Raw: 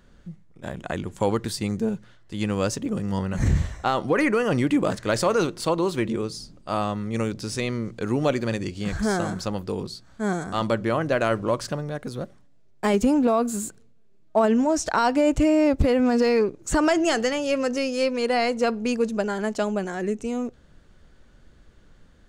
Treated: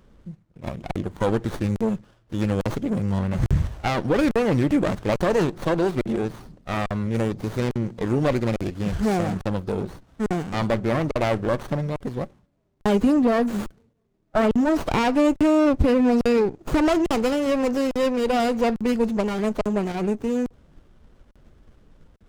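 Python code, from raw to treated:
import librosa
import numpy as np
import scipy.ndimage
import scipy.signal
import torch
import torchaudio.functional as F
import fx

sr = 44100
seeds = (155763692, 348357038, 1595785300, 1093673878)

p1 = fx.spec_quant(x, sr, step_db=15)
p2 = fx.level_steps(p1, sr, step_db=16)
p3 = p1 + F.gain(torch.from_numpy(p2), -1.5).numpy()
p4 = fx.buffer_crackle(p3, sr, first_s=0.91, period_s=0.85, block=2048, kind='zero')
y = fx.running_max(p4, sr, window=17)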